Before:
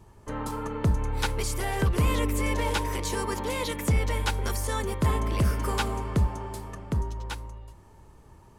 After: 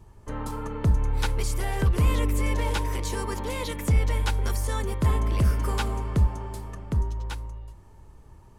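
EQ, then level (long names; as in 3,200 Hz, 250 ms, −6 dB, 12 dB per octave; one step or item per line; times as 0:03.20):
low-shelf EQ 92 Hz +8.5 dB
−2.0 dB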